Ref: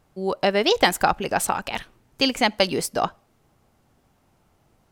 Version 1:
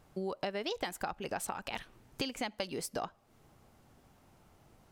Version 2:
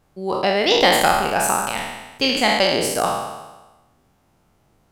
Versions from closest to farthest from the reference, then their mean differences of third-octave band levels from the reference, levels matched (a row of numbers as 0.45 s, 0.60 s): 1, 2; 3.0 dB, 7.5 dB